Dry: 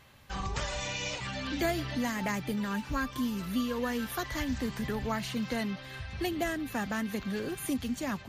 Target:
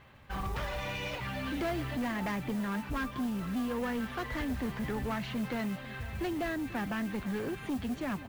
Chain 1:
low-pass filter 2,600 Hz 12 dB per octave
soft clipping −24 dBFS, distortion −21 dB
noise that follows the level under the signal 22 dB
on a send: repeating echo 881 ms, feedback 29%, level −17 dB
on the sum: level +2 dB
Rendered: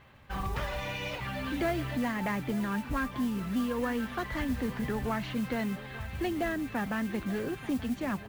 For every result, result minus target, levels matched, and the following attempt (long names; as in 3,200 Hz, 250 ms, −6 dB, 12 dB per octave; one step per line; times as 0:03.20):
echo 392 ms late; soft clipping: distortion −9 dB
low-pass filter 2,600 Hz 12 dB per octave
soft clipping −24 dBFS, distortion −21 dB
noise that follows the level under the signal 22 dB
on a send: repeating echo 489 ms, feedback 29%, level −17 dB
on the sum: level +2 dB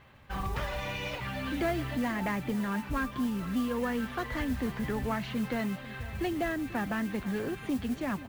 soft clipping: distortion −9 dB
low-pass filter 2,600 Hz 12 dB per octave
soft clipping −31 dBFS, distortion −12 dB
noise that follows the level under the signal 22 dB
on a send: repeating echo 489 ms, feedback 29%, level −17 dB
on the sum: level +2 dB